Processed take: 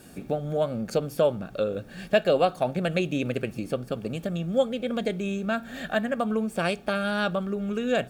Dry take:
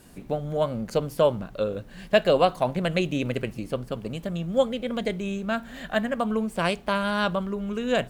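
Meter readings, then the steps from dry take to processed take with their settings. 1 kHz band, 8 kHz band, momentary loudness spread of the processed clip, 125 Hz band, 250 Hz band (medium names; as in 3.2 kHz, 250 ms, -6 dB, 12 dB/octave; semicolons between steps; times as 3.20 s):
-2.5 dB, -0.5 dB, 7 LU, -1.0 dB, -0.5 dB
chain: in parallel at +3 dB: compression, threshold -32 dBFS, peak gain reduction 17 dB; on the sum: comb of notches 1 kHz; trim -3.5 dB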